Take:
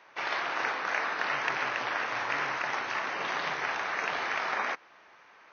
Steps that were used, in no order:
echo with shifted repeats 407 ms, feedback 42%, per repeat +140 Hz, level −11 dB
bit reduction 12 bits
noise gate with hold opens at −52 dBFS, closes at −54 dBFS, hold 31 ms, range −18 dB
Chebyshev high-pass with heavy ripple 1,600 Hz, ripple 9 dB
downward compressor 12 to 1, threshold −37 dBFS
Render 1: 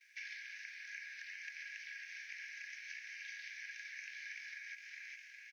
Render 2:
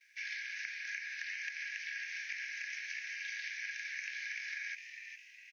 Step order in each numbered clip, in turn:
echo with shifted repeats, then downward compressor, then bit reduction, then noise gate with hold, then Chebyshev high-pass with heavy ripple
bit reduction, then noise gate with hold, then Chebyshev high-pass with heavy ripple, then echo with shifted repeats, then downward compressor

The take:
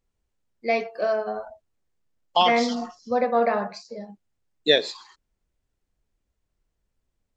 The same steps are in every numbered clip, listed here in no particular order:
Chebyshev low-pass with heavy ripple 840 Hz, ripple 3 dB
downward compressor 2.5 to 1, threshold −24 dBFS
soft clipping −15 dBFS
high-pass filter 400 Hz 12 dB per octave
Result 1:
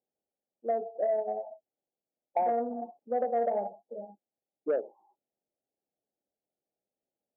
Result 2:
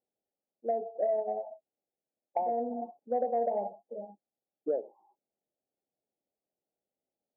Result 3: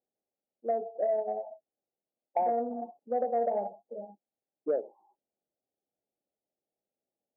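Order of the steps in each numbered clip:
Chebyshev low-pass with heavy ripple, then soft clipping, then downward compressor, then high-pass filter
high-pass filter, then downward compressor, then Chebyshev low-pass with heavy ripple, then soft clipping
Chebyshev low-pass with heavy ripple, then downward compressor, then soft clipping, then high-pass filter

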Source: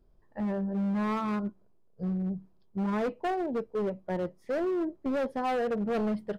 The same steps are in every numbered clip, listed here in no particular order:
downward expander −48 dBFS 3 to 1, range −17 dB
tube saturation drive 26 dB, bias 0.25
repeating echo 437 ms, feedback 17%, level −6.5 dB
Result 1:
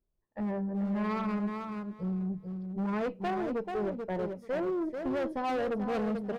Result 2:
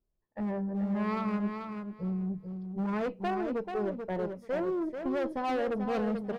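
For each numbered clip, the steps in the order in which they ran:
repeating echo, then downward expander, then tube saturation
tube saturation, then repeating echo, then downward expander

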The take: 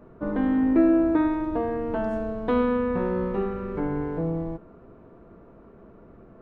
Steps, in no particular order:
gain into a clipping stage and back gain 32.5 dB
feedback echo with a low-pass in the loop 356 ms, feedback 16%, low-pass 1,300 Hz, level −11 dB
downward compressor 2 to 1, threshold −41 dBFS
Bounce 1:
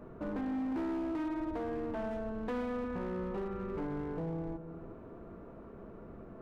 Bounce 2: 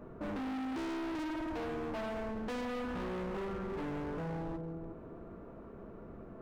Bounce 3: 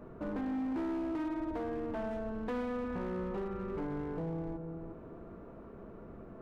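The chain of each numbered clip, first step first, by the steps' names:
downward compressor, then feedback echo with a low-pass in the loop, then gain into a clipping stage and back
feedback echo with a low-pass in the loop, then gain into a clipping stage and back, then downward compressor
feedback echo with a low-pass in the loop, then downward compressor, then gain into a clipping stage and back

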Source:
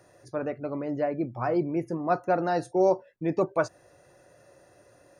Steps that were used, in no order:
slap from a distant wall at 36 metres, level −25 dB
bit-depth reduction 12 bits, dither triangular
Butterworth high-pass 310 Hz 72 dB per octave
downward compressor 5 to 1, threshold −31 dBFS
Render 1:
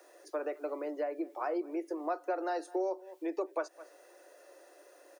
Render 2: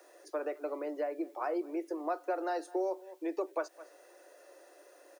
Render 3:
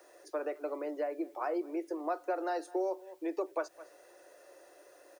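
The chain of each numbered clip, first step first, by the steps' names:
slap from a distant wall, then bit-depth reduction, then downward compressor, then Butterworth high-pass
slap from a distant wall, then downward compressor, then bit-depth reduction, then Butterworth high-pass
slap from a distant wall, then downward compressor, then Butterworth high-pass, then bit-depth reduction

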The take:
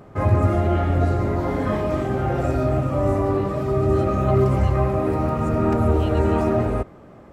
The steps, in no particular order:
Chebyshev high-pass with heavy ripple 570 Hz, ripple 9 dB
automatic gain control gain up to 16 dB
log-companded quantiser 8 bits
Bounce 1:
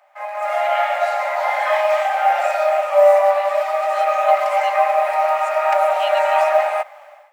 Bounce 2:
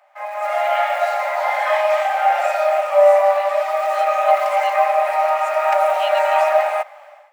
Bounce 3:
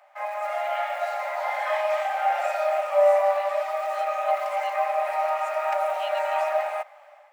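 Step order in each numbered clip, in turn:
Chebyshev high-pass with heavy ripple, then log-companded quantiser, then automatic gain control
log-companded quantiser, then Chebyshev high-pass with heavy ripple, then automatic gain control
log-companded quantiser, then automatic gain control, then Chebyshev high-pass with heavy ripple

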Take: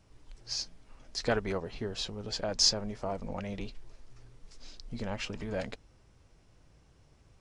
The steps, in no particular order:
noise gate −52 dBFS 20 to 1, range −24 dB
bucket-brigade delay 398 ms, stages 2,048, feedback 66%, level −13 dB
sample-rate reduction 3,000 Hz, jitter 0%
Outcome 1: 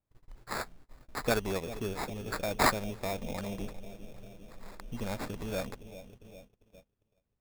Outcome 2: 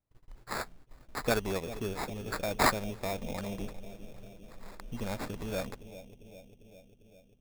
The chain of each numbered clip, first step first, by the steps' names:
bucket-brigade delay, then sample-rate reduction, then noise gate
noise gate, then bucket-brigade delay, then sample-rate reduction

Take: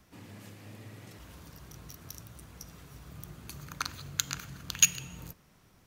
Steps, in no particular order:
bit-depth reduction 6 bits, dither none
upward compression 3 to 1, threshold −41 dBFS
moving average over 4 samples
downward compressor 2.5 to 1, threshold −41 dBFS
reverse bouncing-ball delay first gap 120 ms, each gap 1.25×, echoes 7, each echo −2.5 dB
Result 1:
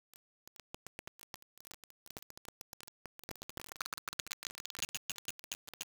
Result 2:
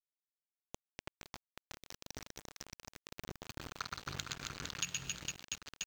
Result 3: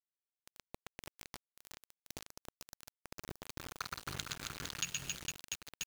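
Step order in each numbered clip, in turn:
reverse bouncing-ball delay, then downward compressor, then moving average, then upward compression, then bit-depth reduction
reverse bouncing-ball delay, then bit-depth reduction, then moving average, then downward compressor, then upward compression
reverse bouncing-ball delay, then upward compression, then moving average, then bit-depth reduction, then downward compressor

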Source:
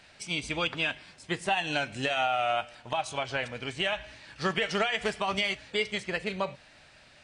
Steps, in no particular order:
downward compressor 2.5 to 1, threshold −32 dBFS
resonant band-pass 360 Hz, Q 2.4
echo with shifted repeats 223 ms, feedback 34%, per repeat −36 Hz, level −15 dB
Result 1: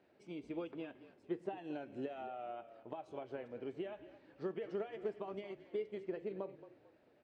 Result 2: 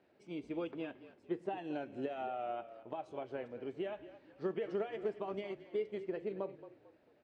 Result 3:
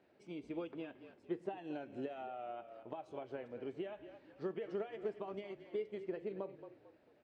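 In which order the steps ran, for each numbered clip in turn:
downward compressor, then echo with shifted repeats, then resonant band-pass
echo with shifted repeats, then resonant band-pass, then downward compressor
echo with shifted repeats, then downward compressor, then resonant band-pass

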